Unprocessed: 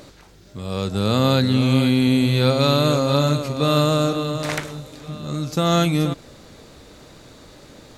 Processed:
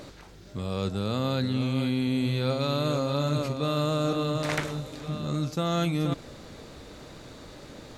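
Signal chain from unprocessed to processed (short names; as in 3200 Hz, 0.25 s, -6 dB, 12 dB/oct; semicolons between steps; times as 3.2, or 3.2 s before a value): high shelf 5700 Hz -5 dB; reverse; compressor 6:1, threshold -24 dBFS, peak gain reduction 11.5 dB; reverse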